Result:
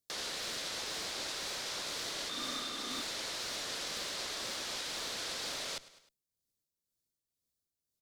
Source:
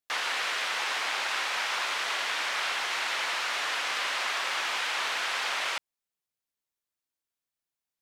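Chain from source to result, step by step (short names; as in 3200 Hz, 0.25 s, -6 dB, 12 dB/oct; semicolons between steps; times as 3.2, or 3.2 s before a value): octaver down 1 oct, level +1 dB; feedback echo 0.103 s, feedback 47%, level -20.5 dB; tremolo 2 Hz, depth 48%; hard clip -26 dBFS, distortion -19 dB; 2.29–3.02 small resonant body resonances 250/1200/3600 Hz, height 14 dB; in parallel at -2 dB: negative-ratio compressor -36 dBFS, ratio -0.5; on the sum: band shelf 1500 Hz -12.5 dB 2.3 oct; gain -3 dB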